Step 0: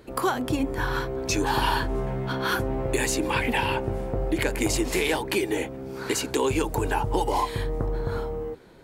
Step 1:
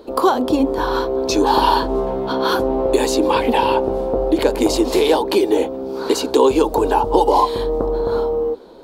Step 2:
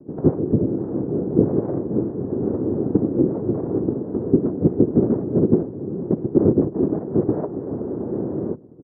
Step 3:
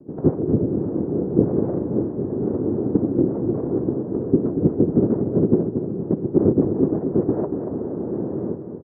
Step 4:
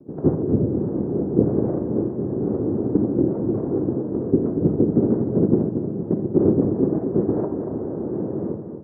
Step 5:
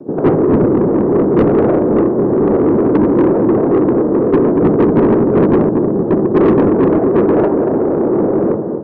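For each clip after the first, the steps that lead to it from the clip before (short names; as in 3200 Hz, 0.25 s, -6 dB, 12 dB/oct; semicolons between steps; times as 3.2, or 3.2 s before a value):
graphic EQ 125/250/500/1000/2000/4000/8000 Hz -12/+7/+9/+8/-10/+9/-4 dB; gain +2.5 dB
comb 2.8 ms, depth 45%; noise vocoder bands 3; ladder low-pass 480 Hz, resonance 35%; gain +3 dB
feedback echo 0.234 s, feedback 44%, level -8 dB; gain -1 dB
reverb, pre-delay 23 ms, DRR 6.5 dB; gain -1 dB
overdrive pedal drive 29 dB, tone 1300 Hz, clips at -1.5 dBFS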